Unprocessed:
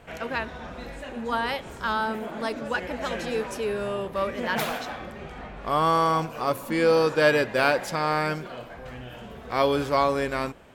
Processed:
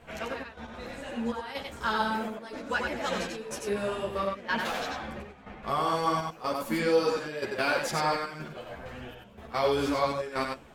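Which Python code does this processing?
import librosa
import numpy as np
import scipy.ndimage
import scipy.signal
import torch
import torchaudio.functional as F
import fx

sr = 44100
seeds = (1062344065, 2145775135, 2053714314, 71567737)

p1 = fx.over_compress(x, sr, threshold_db=-25.0, ratio=-0.5)
p2 = x + F.gain(torch.from_numpy(p1), -2.0).numpy()
p3 = fx.high_shelf(p2, sr, hz=9400.0, db=-8.5, at=(4.17, 5.09))
p4 = fx.step_gate(p3, sr, bpm=184, pattern='xxxx...x.xxx', floor_db=-12.0, edge_ms=4.5)
p5 = fx.dynamic_eq(p4, sr, hz=5900.0, q=0.76, threshold_db=-44.0, ratio=4.0, max_db=4)
p6 = p5 + fx.echo_single(p5, sr, ms=92, db=-4.0, dry=0)
p7 = fx.ensemble(p6, sr)
y = F.gain(torch.from_numpy(p7), -5.5).numpy()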